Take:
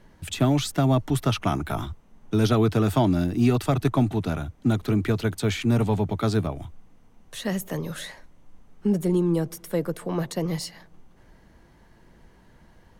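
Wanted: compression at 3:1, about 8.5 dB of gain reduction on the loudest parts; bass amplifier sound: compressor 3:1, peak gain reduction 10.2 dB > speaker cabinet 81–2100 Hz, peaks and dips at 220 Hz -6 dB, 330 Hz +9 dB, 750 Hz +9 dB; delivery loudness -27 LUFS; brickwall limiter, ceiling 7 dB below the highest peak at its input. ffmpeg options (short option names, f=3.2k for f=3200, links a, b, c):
-af "acompressor=threshold=-28dB:ratio=3,alimiter=limit=-23dB:level=0:latency=1,acompressor=threshold=-40dB:ratio=3,highpass=f=81:w=0.5412,highpass=f=81:w=1.3066,equalizer=f=220:t=q:w=4:g=-6,equalizer=f=330:t=q:w=4:g=9,equalizer=f=750:t=q:w=4:g=9,lowpass=f=2.1k:w=0.5412,lowpass=f=2.1k:w=1.3066,volume=13.5dB"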